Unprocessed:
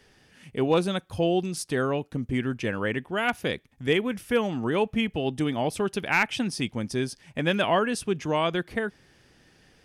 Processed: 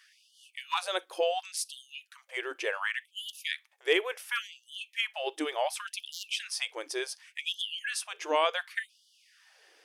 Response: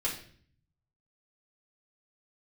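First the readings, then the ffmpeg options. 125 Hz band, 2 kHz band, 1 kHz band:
below −40 dB, −4.0 dB, −5.0 dB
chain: -filter_complex "[0:a]asplit=2[link_01][link_02];[1:a]atrim=start_sample=2205,atrim=end_sample=3087[link_03];[link_02][link_03]afir=irnorm=-1:irlink=0,volume=-21dB[link_04];[link_01][link_04]amix=inputs=2:normalize=0,asubboost=boost=8.5:cutoff=110,afftfilt=real='re*gte(b*sr/1024,300*pow(2900/300,0.5+0.5*sin(2*PI*0.69*pts/sr)))':imag='im*gte(b*sr/1024,300*pow(2900/300,0.5+0.5*sin(2*PI*0.69*pts/sr)))':win_size=1024:overlap=0.75"

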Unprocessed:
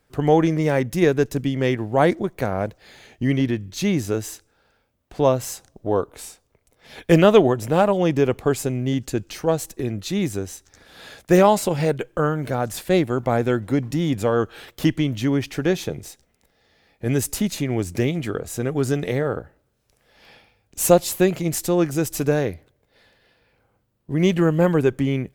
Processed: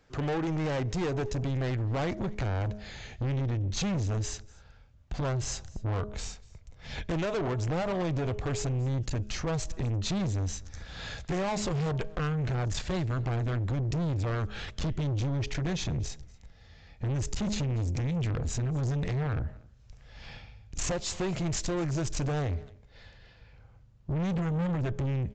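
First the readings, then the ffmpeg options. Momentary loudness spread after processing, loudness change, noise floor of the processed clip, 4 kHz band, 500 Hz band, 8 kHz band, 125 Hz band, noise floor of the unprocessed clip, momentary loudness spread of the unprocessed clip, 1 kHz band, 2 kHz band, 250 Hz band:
10 LU, −10.5 dB, −56 dBFS, −6.5 dB, −15.0 dB, −7.5 dB, −4.0 dB, −67 dBFS, 11 LU, −12.5 dB, −10.0 dB, −12.0 dB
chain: -af "bandreject=frequency=209:width_type=h:width=4,bandreject=frequency=418:width_type=h:width=4,bandreject=frequency=627:width_type=h:width=4,asubboost=boost=9.5:cutoff=110,acompressor=threshold=-20dB:ratio=4,aresample=16000,asoftclip=type=tanh:threshold=-29.5dB,aresample=44100,aecho=1:1:240:0.0631,volume=2dB"

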